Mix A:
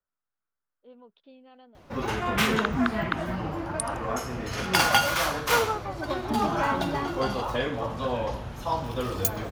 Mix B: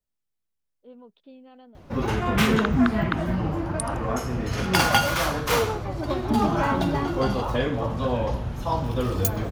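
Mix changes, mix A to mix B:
second voice: remove synth low-pass 1400 Hz, resonance Q 3.6; master: add low shelf 370 Hz +8.5 dB

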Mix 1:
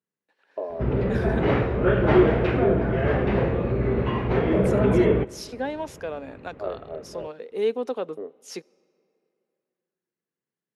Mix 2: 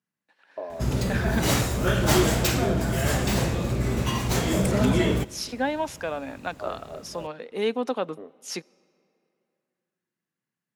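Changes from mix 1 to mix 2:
second voice +6.0 dB; background: remove LPF 2400 Hz 24 dB/oct; master: add bell 430 Hz -9 dB 0.72 oct

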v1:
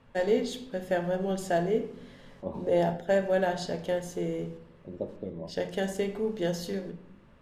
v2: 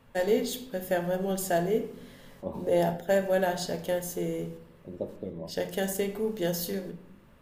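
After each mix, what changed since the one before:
master: remove air absorption 72 m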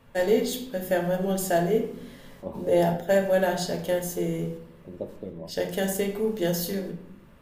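first voice: send +6.5 dB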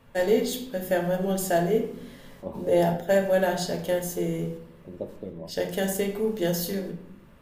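none

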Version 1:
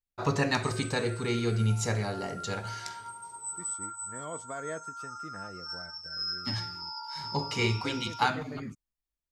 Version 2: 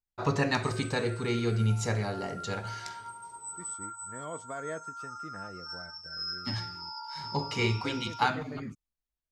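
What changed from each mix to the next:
master: add high shelf 6200 Hz -6 dB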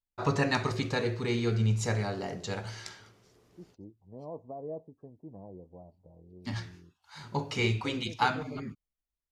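second voice: add elliptic low-pass 910 Hz, stop band 40 dB; background: muted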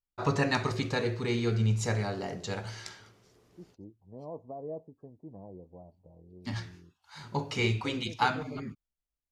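none

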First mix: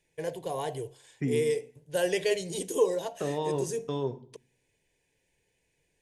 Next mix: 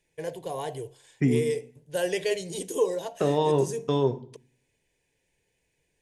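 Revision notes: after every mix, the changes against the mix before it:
second voice +7.5 dB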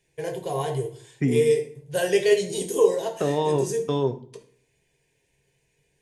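first voice: send on

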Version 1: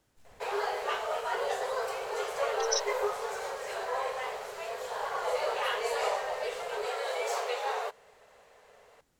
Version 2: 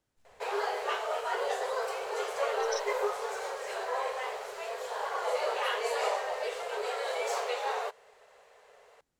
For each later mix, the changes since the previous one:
speech -9.0 dB; master: add bell 15000 Hz -5.5 dB 0.33 oct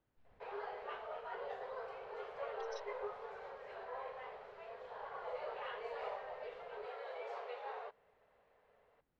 background -11.5 dB; master: add air absorption 350 m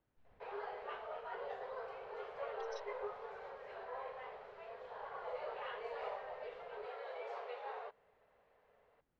master: add high shelf 10000 Hz -7.5 dB

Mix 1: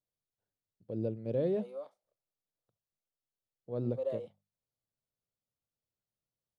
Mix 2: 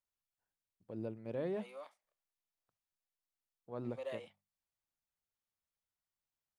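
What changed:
second voice: add resonant high shelf 1600 Hz +8 dB, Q 1.5; master: add graphic EQ 125/250/500/1000/2000/4000 Hz -10/-3/-9/+7/+4/-5 dB

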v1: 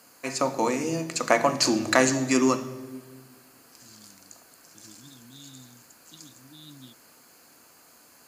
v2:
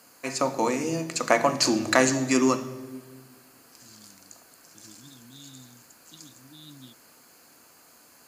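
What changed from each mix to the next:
none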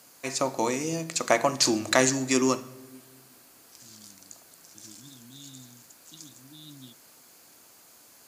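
first voice: send -9.0 dB

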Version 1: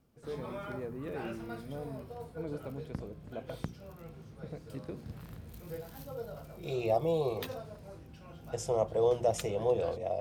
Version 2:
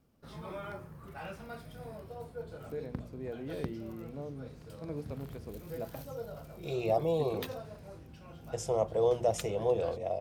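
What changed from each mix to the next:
first voice: entry +2.45 s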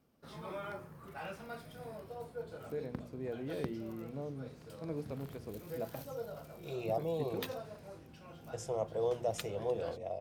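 second voice -6.0 dB; background: add HPF 180 Hz 6 dB/oct

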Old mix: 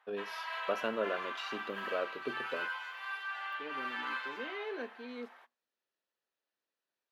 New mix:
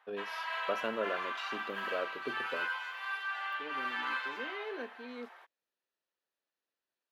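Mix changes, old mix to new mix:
background +3.5 dB; reverb: off

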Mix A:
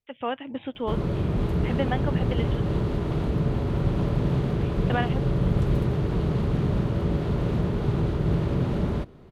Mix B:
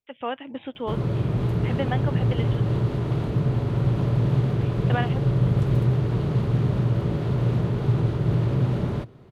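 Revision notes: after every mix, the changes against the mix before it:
background: add bell 120 Hz +13 dB 0.42 oct; master: add low shelf 120 Hz -9 dB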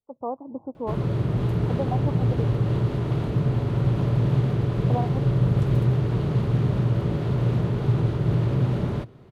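speech: add steep low-pass 1100 Hz 72 dB/oct

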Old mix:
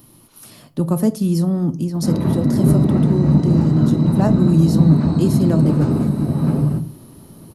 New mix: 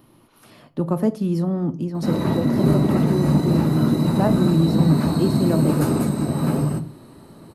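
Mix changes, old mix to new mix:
background: remove tape spacing loss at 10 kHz 34 dB; master: add tone controls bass -6 dB, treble -15 dB

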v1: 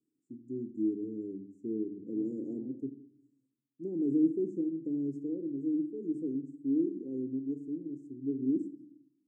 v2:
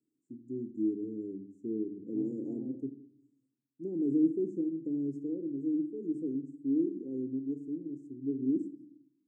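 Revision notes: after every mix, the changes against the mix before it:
second voice +6.0 dB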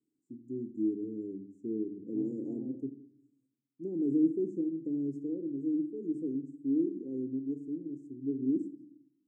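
none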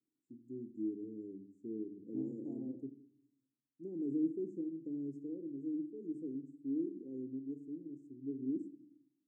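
first voice -7.5 dB; second voice: send -8.5 dB

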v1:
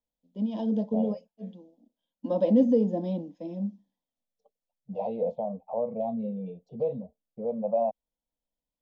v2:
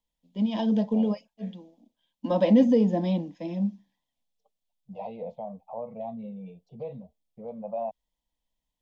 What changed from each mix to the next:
first voice +9.5 dB; master: add graphic EQ 250/500/2000 Hz -6/-8/+7 dB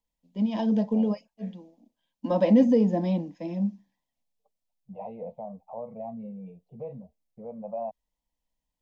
second voice: add air absorption 460 m; master: add bell 3400 Hz -7 dB 0.41 oct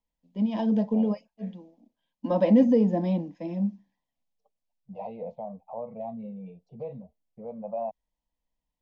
second voice: remove air absorption 460 m; master: add LPF 3700 Hz 6 dB/oct

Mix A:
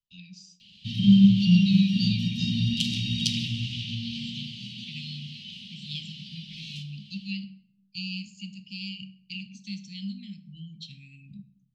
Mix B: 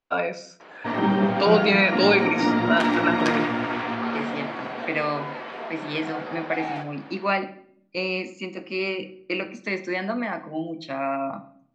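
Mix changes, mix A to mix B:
first voice +5.0 dB; background -8.5 dB; master: remove Chebyshev band-stop 200–2900 Hz, order 5

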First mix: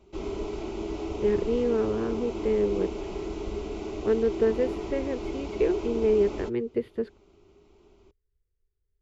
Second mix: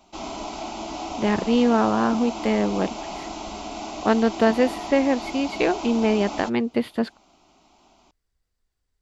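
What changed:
background -8.5 dB; master: remove EQ curve 110 Hz 0 dB, 160 Hz -7 dB, 280 Hz -13 dB, 410 Hz +5 dB, 700 Hz -22 dB, 1100 Hz -17 dB, 1900 Hz -13 dB, 4700 Hz -21 dB

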